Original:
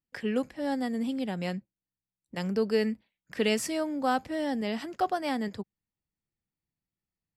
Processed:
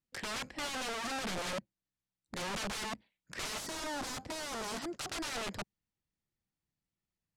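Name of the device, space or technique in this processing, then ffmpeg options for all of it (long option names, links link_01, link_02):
overflowing digital effects unit: -filter_complex "[0:a]aeval=exprs='(mod(42.2*val(0)+1,2)-1)/42.2':channel_layout=same,lowpass=8100,asettb=1/sr,asplit=3[link_01][link_02][link_03];[link_01]atrim=end=3.604[link_04];[link_02]atrim=start=3.6:end=5,asetpts=PTS-STARTPTS,afade=type=in:duration=0.004:curve=qsin,afade=type=out:start_time=1.396:duration=0.004:curve=qsin,equalizer=frequency=2500:width=1.1:gain=-6[link_05];[link_03]atrim=start=4.996[link_06];[link_04][link_05]acrossfade=duration=0.004:curve1=hsin:curve2=qsin[link_07];[link_07][link_06]acrossfade=duration=0.004:curve1=qsin:curve2=hsin"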